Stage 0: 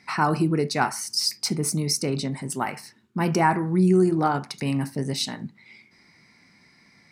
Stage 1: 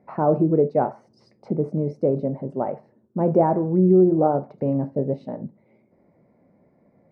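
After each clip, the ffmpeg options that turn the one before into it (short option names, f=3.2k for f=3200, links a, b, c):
-af "lowpass=f=570:t=q:w=5.3"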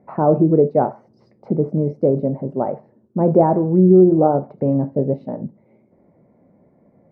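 -af "lowpass=f=1.2k:p=1,volume=5dB"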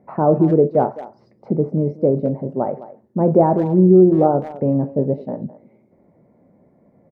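-filter_complex "[0:a]asplit=2[a][b];[b]adelay=210,highpass=300,lowpass=3.4k,asoftclip=type=hard:threshold=-9.5dB,volume=-15dB[c];[a][c]amix=inputs=2:normalize=0"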